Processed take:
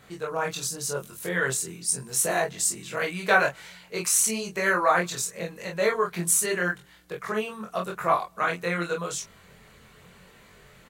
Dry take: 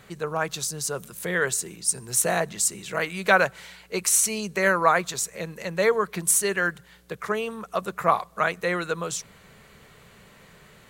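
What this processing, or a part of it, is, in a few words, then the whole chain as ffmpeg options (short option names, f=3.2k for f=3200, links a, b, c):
double-tracked vocal: -filter_complex "[0:a]asplit=2[a][b];[b]adelay=23,volume=-3dB[c];[a][c]amix=inputs=2:normalize=0,flanger=delay=20:depth=3.8:speed=0.86"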